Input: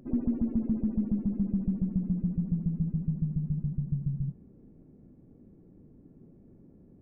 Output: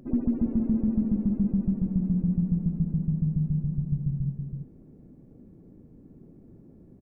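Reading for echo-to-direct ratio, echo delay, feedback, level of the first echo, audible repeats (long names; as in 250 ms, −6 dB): −6.5 dB, 327 ms, repeats not evenly spaced, −6.5 dB, 1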